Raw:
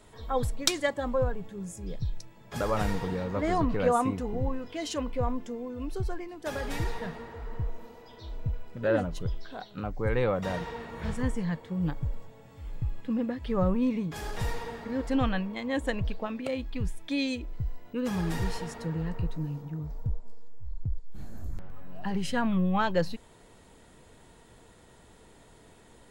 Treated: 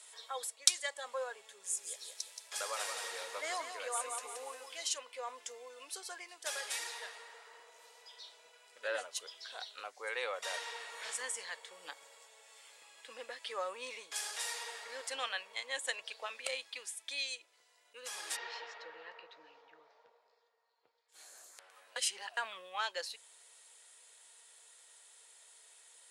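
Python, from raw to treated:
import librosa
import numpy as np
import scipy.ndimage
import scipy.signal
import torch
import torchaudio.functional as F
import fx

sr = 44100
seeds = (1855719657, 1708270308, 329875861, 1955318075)

y = fx.echo_crushed(x, sr, ms=175, feedback_pct=35, bits=9, wet_db=-6, at=(1.47, 4.91))
y = fx.gaussian_blur(y, sr, sigma=2.5, at=(18.35, 21.08), fade=0.02)
y = fx.edit(y, sr, fx.reverse_span(start_s=21.96, length_s=0.41), tone=tone)
y = scipy.signal.sosfilt(scipy.signal.cheby1(3, 1.0, [470.0, 9800.0], 'bandpass', fs=sr, output='sos'), y)
y = np.diff(y, prepend=0.0)
y = fx.rider(y, sr, range_db=5, speed_s=0.5)
y = y * 10.0 ** (7.0 / 20.0)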